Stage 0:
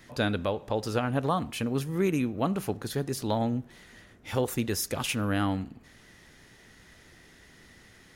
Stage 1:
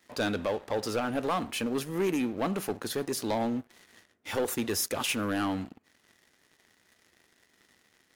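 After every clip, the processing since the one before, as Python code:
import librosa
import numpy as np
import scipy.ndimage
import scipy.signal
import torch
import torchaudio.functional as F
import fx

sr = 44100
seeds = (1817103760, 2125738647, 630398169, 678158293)

y = scipy.signal.sosfilt(scipy.signal.butter(4, 88.0, 'highpass', fs=sr, output='sos'), x)
y = fx.peak_eq(y, sr, hz=130.0, db=-12.5, octaves=0.94)
y = fx.leveller(y, sr, passes=3)
y = F.gain(torch.from_numpy(y), -8.5).numpy()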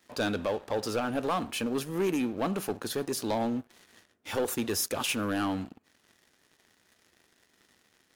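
y = fx.peak_eq(x, sr, hz=2000.0, db=-4.5, octaves=0.2)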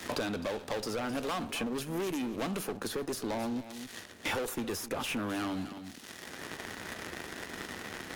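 y = fx.tube_stage(x, sr, drive_db=30.0, bias=0.35)
y = y + 10.0 ** (-17.0 / 20.0) * np.pad(y, (int(258 * sr / 1000.0), 0))[:len(y)]
y = fx.band_squash(y, sr, depth_pct=100)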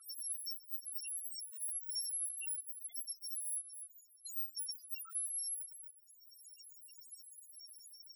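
y = fx.bit_reversed(x, sr, seeds[0], block=256)
y = fx.spec_topn(y, sr, count=2)
y = scipy.signal.sosfilt(scipy.signal.butter(2, 1400.0, 'highpass', fs=sr, output='sos'), y)
y = F.gain(torch.from_numpy(y), 2.0).numpy()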